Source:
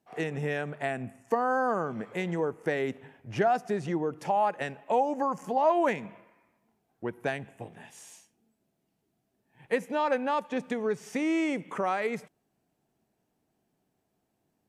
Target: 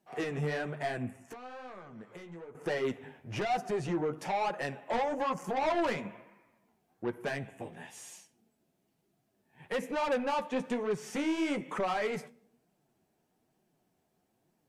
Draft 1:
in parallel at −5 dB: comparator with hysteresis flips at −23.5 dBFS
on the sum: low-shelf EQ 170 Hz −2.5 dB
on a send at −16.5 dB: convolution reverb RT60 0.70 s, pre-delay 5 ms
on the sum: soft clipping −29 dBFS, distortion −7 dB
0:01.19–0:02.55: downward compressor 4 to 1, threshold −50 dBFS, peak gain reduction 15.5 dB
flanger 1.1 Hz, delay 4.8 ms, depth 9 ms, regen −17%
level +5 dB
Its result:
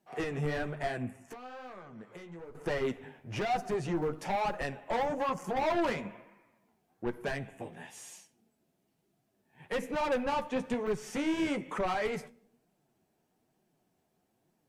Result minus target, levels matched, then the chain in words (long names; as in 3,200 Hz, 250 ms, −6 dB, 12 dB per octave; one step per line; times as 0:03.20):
comparator with hysteresis: distortion −23 dB
in parallel at −5 dB: comparator with hysteresis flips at −16 dBFS
on the sum: low-shelf EQ 170 Hz −2.5 dB
on a send at −16.5 dB: convolution reverb RT60 0.70 s, pre-delay 5 ms
on the sum: soft clipping −29 dBFS, distortion −8 dB
0:01.19–0:02.55: downward compressor 4 to 1, threshold −50 dBFS, peak gain reduction 15 dB
flanger 1.1 Hz, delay 4.8 ms, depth 9 ms, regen −17%
level +5 dB